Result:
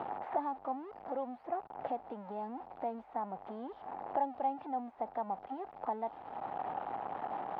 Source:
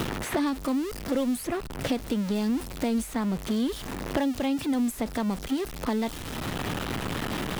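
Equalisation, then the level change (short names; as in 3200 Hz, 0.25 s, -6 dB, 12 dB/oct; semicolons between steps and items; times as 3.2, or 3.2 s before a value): band-pass 790 Hz, Q 7.1; air absorption 330 m; +7.0 dB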